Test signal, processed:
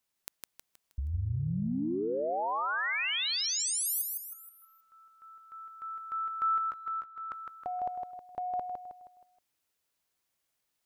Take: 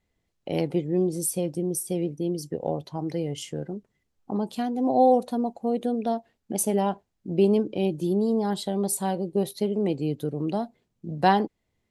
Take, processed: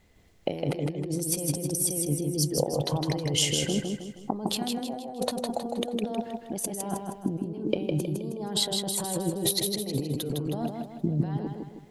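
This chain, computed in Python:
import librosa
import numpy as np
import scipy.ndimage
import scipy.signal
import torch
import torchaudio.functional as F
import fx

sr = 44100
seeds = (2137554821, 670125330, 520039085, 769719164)

p1 = fx.over_compress(x, sr, threshold_db=-37.0, ratio=-1.0)
p2 = p1 + fx.echo_feedback(p1, sr, ms=158, feedback_pct=43, wet_db=-4.0, dry=0)
y = p2 * 10.0 ** (4.5 / 20.0)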